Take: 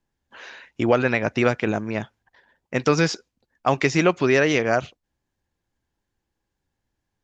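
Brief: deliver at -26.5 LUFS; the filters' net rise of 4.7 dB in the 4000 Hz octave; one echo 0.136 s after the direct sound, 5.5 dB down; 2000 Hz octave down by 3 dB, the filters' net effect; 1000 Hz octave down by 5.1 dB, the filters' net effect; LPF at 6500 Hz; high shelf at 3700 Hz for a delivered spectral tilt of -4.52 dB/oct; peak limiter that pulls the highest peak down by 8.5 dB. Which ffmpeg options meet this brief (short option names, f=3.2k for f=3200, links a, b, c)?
-af "lowpass=6.5k,equalizer=f=1k:t=o:g=-7,equalizer=f=2k:t=o:g=-5,highshelf=f=3.7k:g=8,equalizer=f=4k:t=o:g=3.5,alimiter=limit=-14.5dB:level=0:latency=1,aecho=1:1:136:0.531,volume=-0.5dB"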